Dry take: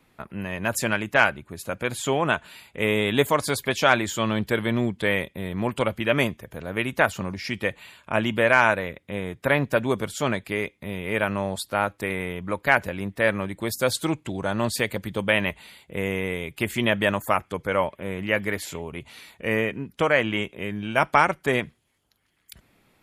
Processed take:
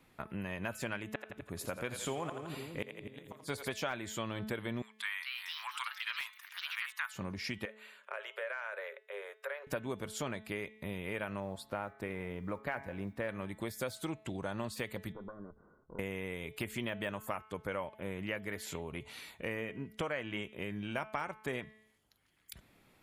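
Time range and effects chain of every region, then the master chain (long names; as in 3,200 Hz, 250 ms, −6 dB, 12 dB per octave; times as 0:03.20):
0:01.05–0:03.74: gate with flip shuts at −11 dBFS, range −35 dB + echo with a time of its own for lows and highs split 380 Hz, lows 247 ms, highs 84 ms, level −9 dB
0:04.82–0:07.14: Butterworth high-pass 1,000 Hz 48 dB per octave + delay with pitch and tempo change per echo 262 ms, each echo +4 semitones, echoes 2, each echo −6 dB
0:07.65–0:09.67: downward compressor 4 to 1, threshold −26 dBFS + Chebyshev high-pass with heavy ripple 390 Hz, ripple 9 dB
0:11.40–0:13.29: noise that follows the level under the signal 31 dB + high-shelf EQ 2,600 Hz −11 dB + hum removal 137.3 Hz, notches 17
0:15.12–0:15.99: lower of the sound and its delayed copy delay 0.52 ms + downward compressor 4 to 1, threshold −37 dBFS + Chebyshev low-pass with heavy ripple 1,500 Hz, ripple 6 dB
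whole clip: de-essing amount 55%; hum removal 216.4 Hz, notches 19; downward compressor 4 to 1, threshold −33 dBFS; level −3.5 dB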